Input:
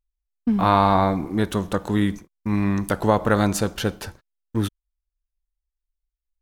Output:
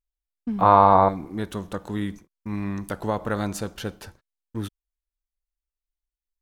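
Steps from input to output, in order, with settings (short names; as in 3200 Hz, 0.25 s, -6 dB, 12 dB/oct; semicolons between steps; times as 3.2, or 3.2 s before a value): 0.61–1.09 graphic EQ 125/500/1000/8000 Hz +7/+10/+10/-11 dB; gain -7.5 dB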